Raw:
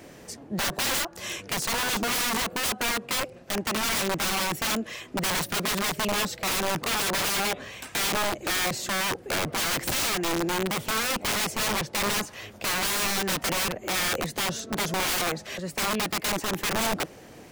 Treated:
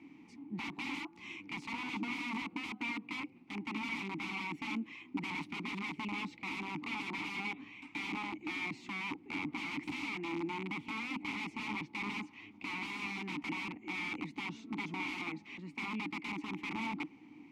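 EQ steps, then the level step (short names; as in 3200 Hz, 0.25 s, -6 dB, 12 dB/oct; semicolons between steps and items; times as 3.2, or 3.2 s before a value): vowel filter u; band shelf 550 Hz -10 dB; high shelf 8100 Hz -11.5 dB; +6.0 dB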